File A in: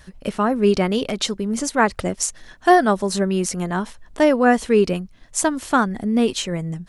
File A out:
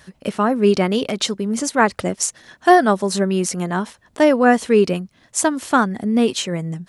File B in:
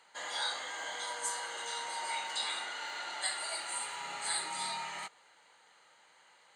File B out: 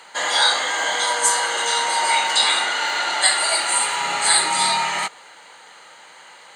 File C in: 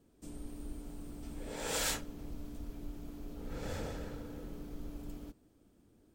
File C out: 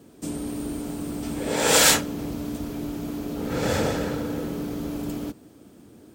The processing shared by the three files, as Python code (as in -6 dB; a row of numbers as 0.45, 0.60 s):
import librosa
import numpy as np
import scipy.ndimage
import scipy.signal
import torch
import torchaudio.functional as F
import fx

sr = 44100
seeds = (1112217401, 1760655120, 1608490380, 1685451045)

y = scipy.signal.sosfilt(scipy.signal.butter(2, 110.0, 'highpass', fs=sr, output='sos'), x)
y = y * 10.0 ** (-1.5 / 20.0) / np.max(np.abs(y))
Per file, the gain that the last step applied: +2.0, +18.5, +18.0 dB